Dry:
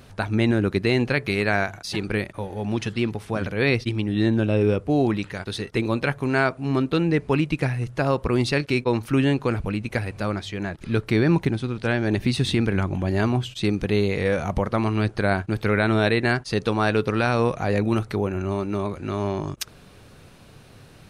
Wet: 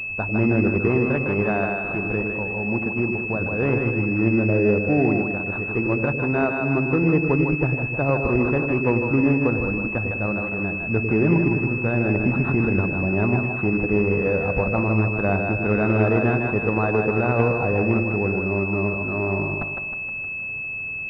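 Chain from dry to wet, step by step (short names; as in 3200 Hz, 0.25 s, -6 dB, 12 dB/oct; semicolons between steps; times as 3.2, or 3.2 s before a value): split-band echo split 490 Hz, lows 0.1 s, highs 0.156 s, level -4 dB; pulse-width modulation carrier 2600 Hz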